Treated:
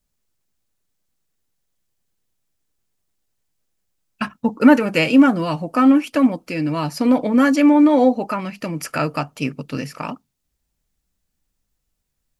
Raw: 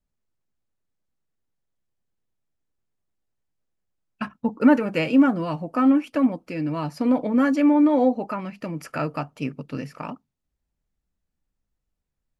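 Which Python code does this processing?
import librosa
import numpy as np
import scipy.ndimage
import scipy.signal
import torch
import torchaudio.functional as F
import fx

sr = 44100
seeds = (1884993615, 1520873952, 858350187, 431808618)

y = fx.high_shelf(x, sr, hz=2900.0, db=10.0)
y = F.gain(torch.from_numpy(y), 4.5).numpy()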